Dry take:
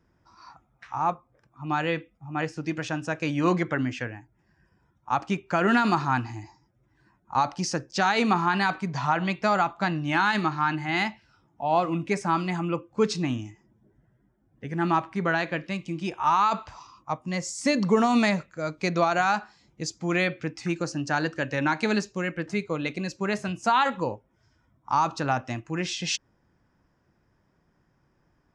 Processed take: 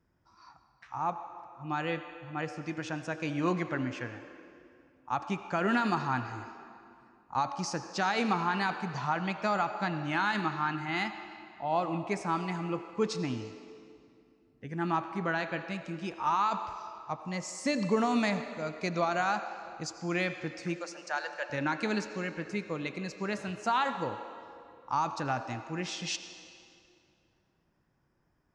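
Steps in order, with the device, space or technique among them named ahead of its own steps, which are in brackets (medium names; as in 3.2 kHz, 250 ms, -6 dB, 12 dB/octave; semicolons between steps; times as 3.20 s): 20.78–21.50 s: Chebyshev high-pass 530 Hz, order 4; filtered reverb send (on a send: high-pass 270 Hz 24 dB/octave + low-pass 8 kHz 12 dB/octave + reverberation RT60 2.5 s, pre-delay 73 ms, DRR 9 dB); on the sum: trim -6.5 dB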